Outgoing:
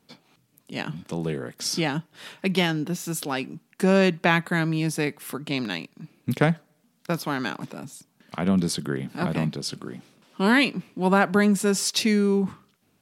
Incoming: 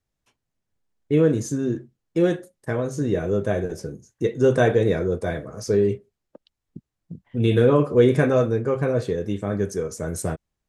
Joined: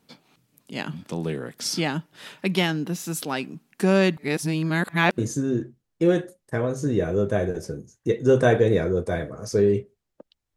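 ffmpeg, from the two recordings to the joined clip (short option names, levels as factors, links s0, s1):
-filter_complex "[0:a]apad=whole_dur=10.56,atrim=end=10.56,asplit=2[s0][s1];[s0]atrim=end=4.172[s2];[s1]atrim=start=4.168:end=5.182,asetpts=PTS-STARTPTS,areverse[s3];[1:a]atrim=start=1.328:end=6.71[s4];[s2][s3]acrossfade=d=0.004:c1=hsin:c2=hsin[s5];[s5][s4]acrossfade=d=0.004:c1=hsin:c2=hsin"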